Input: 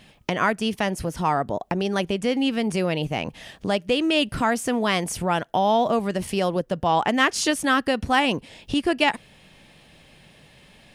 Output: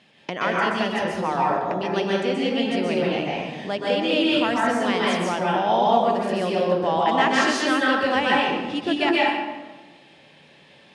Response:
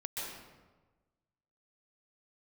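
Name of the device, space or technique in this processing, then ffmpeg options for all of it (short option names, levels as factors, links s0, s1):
supermarket ceiling speaker: -filter_complex "[0:a]highpass=200,lowpass=5800[s0];[1:a]atrim=start_sample=2205[s1];[s0][s1]afir=irnorm=-1:irlink=0"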